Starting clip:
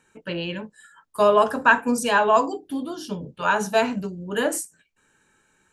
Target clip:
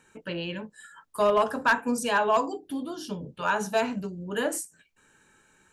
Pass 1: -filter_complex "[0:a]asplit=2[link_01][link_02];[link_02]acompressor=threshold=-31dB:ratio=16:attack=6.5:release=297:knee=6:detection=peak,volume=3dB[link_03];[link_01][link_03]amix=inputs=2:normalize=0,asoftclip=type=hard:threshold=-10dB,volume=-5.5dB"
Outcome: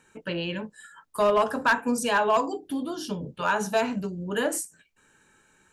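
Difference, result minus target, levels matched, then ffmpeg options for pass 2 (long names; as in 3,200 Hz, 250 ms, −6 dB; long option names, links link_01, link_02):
downward compressor: peak gain reduction −10.5 dB
-filter_complex "[0:a]asplit=2[link_01][link_02];[link_02]acompressor=threshold=-42dB:ratio=16:attack=6.5:release=297:knee=6:detection=peak,volume=3dB[link_03];[link_01][link_03]amix=inputs=2:normalize=0,asoftclip=type=hard:threshold=-10dB,volume=-5.5dB"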